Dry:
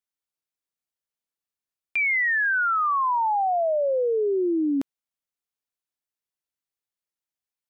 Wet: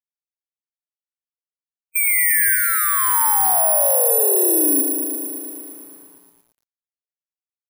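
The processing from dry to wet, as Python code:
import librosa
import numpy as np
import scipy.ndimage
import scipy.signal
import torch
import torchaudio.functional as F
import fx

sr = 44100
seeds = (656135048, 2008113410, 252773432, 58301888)

y = fx.delta_mod(x, sr, bps=64000, step_db=-43.0, at=(2.55, 3.14))
y = fx.spec_topn(y, sr, count=8)
y = (np.kron(scipy.signal.resample_poly(y, 1, 4), np.eye(4)[0]) * 4)[:len(y)]
y = fx.echo_crushed(y, sr, ms=114, feedback_pct=80, bits=8, wet_db=-6)
y = y * librosa.db_to_amplitude(-1.5)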